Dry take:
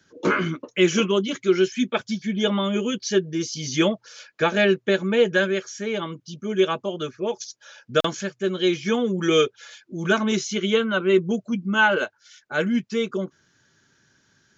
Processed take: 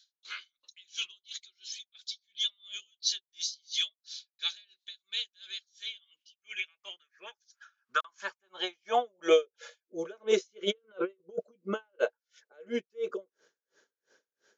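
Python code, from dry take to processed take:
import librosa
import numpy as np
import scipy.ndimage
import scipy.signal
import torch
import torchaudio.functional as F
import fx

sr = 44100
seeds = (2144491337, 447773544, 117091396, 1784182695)

y = fx.filter_sweep_highpass(x, sr, from_hz=3900.0, to_hz=480.0, start_s=5.67, end_s=9.6, q=6.7)
y = fx.over_compress(y, sr, threshold_db=-27.0, ratio=-1.0, at=(10.63, 11.99), fade=0.02)
y = y * 10.0 ** (-37 * (0.5 - 0.5 * np.cos(2.0 * np.pi * 2.9 * np.arange(len(y)) / sr)) / 20.0)
y = y * librosa.db_to_amplitude(-4.0)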